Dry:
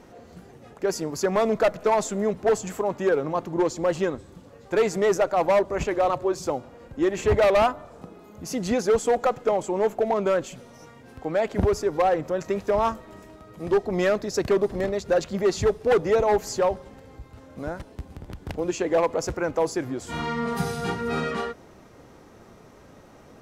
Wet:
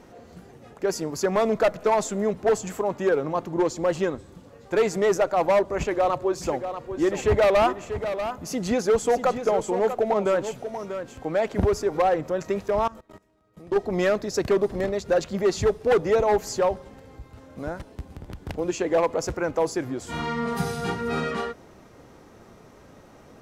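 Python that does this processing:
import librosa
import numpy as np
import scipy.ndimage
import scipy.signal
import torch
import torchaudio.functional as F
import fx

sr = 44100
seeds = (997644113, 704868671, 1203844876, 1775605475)

y = fx.echo_single(x, sr, ms=639, db=-9.5, at=(6.41, 11.99), fade=0.02)
y = fx.level_steps(y, sr, step_db=22, at=(12.68, 13.76))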